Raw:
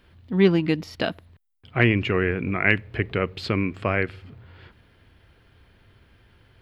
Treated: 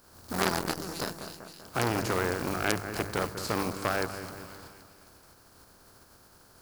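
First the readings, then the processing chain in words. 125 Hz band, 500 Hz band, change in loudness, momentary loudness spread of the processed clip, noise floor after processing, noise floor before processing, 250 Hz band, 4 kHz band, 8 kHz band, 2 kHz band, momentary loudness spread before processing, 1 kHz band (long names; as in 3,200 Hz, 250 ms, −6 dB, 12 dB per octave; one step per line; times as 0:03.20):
−11.0 dB, −7.5 dB, −8.0 dB, 15 LU, −58 dBFS, −58 dBFS, −10.5 dB, −2.5 dB, can't be measured, −9.0 dB, 10 LU, +1.0 dB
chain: compressing power law on the bin magnitudes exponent 0.39
flat-topped bell 2,600 Hz −12.5 dB 1.2 octaves
mains-hum notches 50/100/150/200 Hz
on a send: echo with a time of its own for lows and highs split 2,200 Hz, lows 194 ms, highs 261 ms, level −13.5 dB
on the sum: saturating transformer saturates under 3,200 Hz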